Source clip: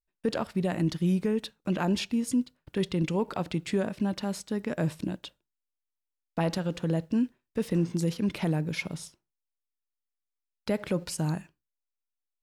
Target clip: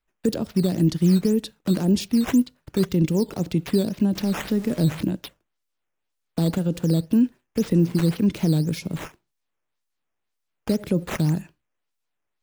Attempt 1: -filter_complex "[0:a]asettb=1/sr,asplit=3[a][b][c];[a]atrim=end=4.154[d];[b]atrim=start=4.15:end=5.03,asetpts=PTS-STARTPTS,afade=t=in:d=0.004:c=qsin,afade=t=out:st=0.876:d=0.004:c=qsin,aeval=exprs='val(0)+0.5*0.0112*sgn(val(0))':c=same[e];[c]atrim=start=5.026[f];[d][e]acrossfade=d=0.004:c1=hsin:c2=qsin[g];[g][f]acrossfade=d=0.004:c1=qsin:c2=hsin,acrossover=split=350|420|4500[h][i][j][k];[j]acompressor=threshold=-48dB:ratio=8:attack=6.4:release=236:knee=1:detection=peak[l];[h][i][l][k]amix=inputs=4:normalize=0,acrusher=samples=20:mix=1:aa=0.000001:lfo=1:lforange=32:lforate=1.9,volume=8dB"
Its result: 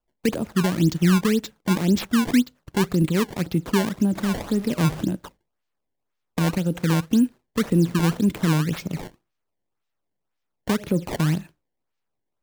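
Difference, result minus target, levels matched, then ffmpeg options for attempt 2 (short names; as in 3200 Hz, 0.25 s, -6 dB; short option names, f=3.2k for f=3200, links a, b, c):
decimation with a swept rate: distortion +8 dB
-filter_complex "[0:a]asettb=1/sr,asplit=3[a][b][c];[a]atrim=end=4.154[d];[b]atrim=start=4.15:end=5.03,asetpts=PTS-STARTPTS,afade=t=in:d=0.004:c=qsin,afade=t=out:st=0.876:d=0.004:c=qsin,aeval=exprs='val(0)+0.5*0.0112*sgn(val(0))':c=same[e];[c]atrim=start=5.026[f];[d][e]acrossfade=d=0.004:c1=hsin:c2=qsin[g];[g][f]acrossfade=d=0.004:c1=qsin:c2=hsin,acrossover=split=350|420|4500[h][i][j][k];[j]acompressor=threshold=-48dB:ratio=8:attack=6.4:release=236:knee=1:detection=peak[l];[h][i][l][k]amix=inputs=4:normalize=0,acrusher=samples=6:mix=1:aa=0.000001:lfo=1:lforange=9.6:lforate=1.9,volume=8dB"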